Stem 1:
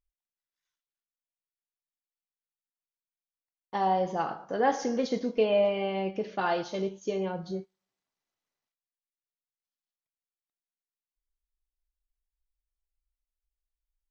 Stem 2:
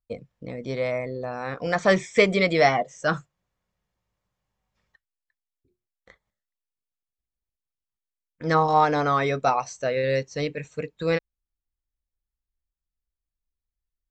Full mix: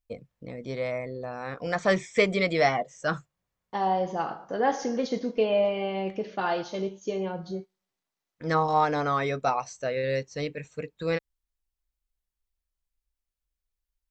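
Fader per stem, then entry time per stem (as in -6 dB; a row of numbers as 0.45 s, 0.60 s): +0.5 dB, -4.0 dB; 0.00 s, 0.00 s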